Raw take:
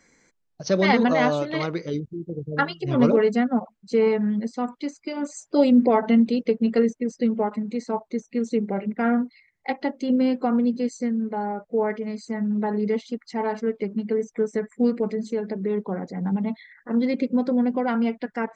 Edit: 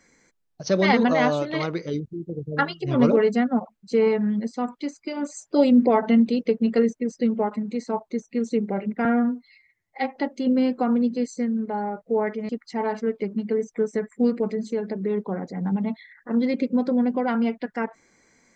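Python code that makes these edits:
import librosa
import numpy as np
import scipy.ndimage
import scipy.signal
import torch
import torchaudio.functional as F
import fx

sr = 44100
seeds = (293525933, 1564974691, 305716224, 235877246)

y = fx.edit(x, sr, fx.stretch_span(start_s=9.05, length_s=0.74, factor=1.5),
    fx.cut(start_s=12.12, length_s=0.97), tone=tone)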